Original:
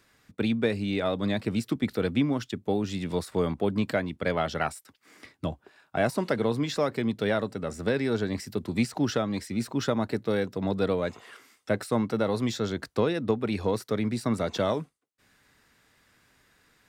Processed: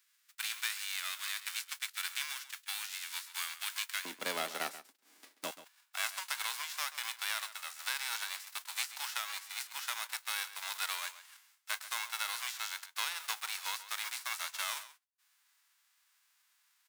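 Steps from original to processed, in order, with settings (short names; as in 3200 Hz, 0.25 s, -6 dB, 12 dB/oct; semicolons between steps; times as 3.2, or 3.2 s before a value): spectral whitening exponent 0.3; HPF 1300 Hz 24 dB/oct, from 4.05 s 260 Hz, from 5.51 s 990 Hz; outdoor echo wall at 23 m, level -14 dB; gain -8.5 dB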